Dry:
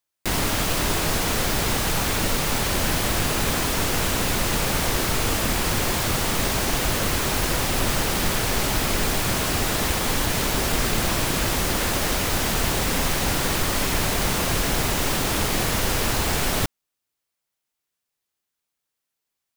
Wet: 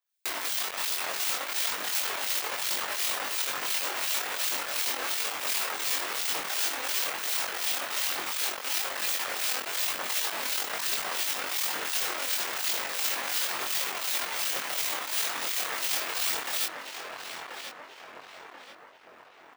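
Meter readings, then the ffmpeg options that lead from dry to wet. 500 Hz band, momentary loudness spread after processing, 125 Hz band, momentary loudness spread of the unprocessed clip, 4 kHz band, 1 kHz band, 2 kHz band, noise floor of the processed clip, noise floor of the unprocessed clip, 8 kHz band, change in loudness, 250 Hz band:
-13.0 dB, 9 LU, under -35 dB, 0 LU, -5.0 dB, -8.5 dB, -6.0 dB, -51 dBFS, -83 dBFS, -6.0 dB, -5.5 dB, -22.5 dB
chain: -filter_complex "[0:a]asplit=2[a][b];[b]acrusher=bits=3:dc=4:mix=0:aa=0.000001,volume=-9.5dB[c];[a][c]amix=inputs=2:normalize=0,acrossover=split=2100[d][e];[d]aeval=exprs='val(0)*(1-0.7/2+0.7/2*cos(2*PI*2.8*n/s))':c=same[f];[e]aeval=exprs='val(0)*(1-0.7/2-0.7/2*cos(2*PI*2.8*n/s))':c=same[g];[f][g]amix=inputs=2:normalize=0,highshelf=f=4.6k:g=-9,asplit=2[h][i];[i]adelay=1034,lowpass=f=2k:p=1,volume=-5.5dB,asplit=2[j][k];[k]adelay=1034,lowpass=f=2k:p=1,volume=0.46,asplit=2[l][m];[m]adelay=1034,lowpass=f=2k:p=1,volume=0.46,asplit=2[n][o];[o]adelay=1034,lowpass=f=2k:p=1,volume=0.46,asplit=2[p][q];[q]adelay=1034,lowpass=f=2k:p=1,volume=0.46,asplit=2[r][s];[s]adelay=1034,lowpass=f=2k:p=1,volume=0.46[t];[h][j][l][n][p][r][t]amix=inputs=7:normalize=0,acompressor=threshold=-41dB:ratio=1.5,aeval=exprs='max(val(0),0)':c=same,equalizer=f=13k:t=o:w=1.8:g=-9,aphaser=in_gain=1:out_gain=1:delay=4.1:decay=0.35:speed=1.1:type=triangular,crystalizer=i=7.5:c=0,highpass=530,asplit=2[u][v];[v]adelay=22,volume=-2.5dB[w];[u][w]amix=inputs=2:normalize=0,volume=-2.5dB"

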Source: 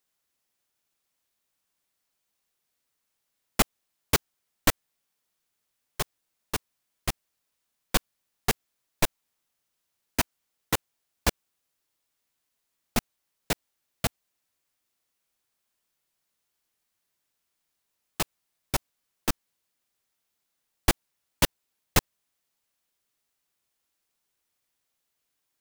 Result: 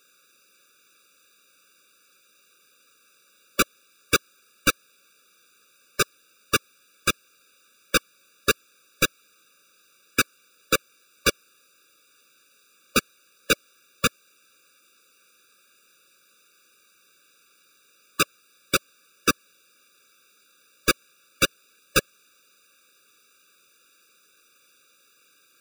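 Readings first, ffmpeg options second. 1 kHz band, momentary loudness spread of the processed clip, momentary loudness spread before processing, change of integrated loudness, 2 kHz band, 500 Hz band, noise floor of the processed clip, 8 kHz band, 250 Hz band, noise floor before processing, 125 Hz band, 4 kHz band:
+4.0 dB, 3 LU, 8 LU, +4.5 dB, +8.0 dB, +5.5 dB, -61 dBFS, +4.5 dB, +2.5 dB, -80 dBFS, -3.0 dB, +5.5 dB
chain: -filter_complex "[0:a]lowshelf=f=86:g=-6,asplit=2[a][b];[b]highpass=f=720:p=1,volume=34dB,asoftclip=type=tanh:threshold=-4dB[c];[a][c]amix=inputs=2:normalize=0,lowpass=f=4.3k:p=1,volume=-6dB,afftfilt=real='re*eq(mod(floor(b*sr/1024/570),2),0)':imag='im*eq(mod(floor(b*sr/1024/570),2),0)':win_size=1024:overlap=0.75"

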